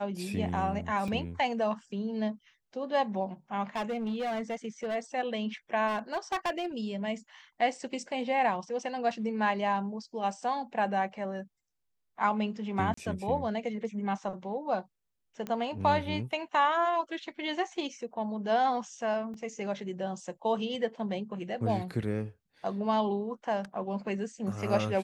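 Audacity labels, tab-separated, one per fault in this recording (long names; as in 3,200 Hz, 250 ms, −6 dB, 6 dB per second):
1.080000	1.080000	drop-out 4 ms
3.760000	4.960000	clipping −29 dBFS
5.870000	6.660000	clipping −26.5 dBFS
12.940000	12.970000	drop-out 34 ms
15.470000	15.470000	click −22 dBFS
19.340000	19.340000	drop-out 2.7 ms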